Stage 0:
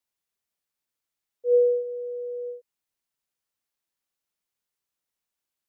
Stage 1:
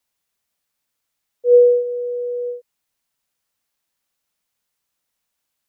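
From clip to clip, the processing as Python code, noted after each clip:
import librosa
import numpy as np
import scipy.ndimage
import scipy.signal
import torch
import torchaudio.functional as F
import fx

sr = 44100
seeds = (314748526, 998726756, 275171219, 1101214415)

y = fx.peak_eq(x, sr, hz=370.0, db=-8.5, octaves=0.2)
y = y * librosa.db_to_amplitude(9.0)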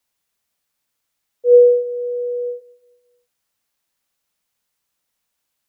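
y = fx.echo_feedback(x, sr, ms=221, feedback_pct=36, wet_db=-21.0)
y = y * librosa.db_to_amplitude(1.5)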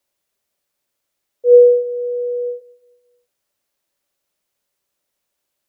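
y = fx.small_body(x, sr, hz=(380.0, 570.0), ring_ms=45, db=11)
y = y * librosa.db_to_amplitude(-1.0)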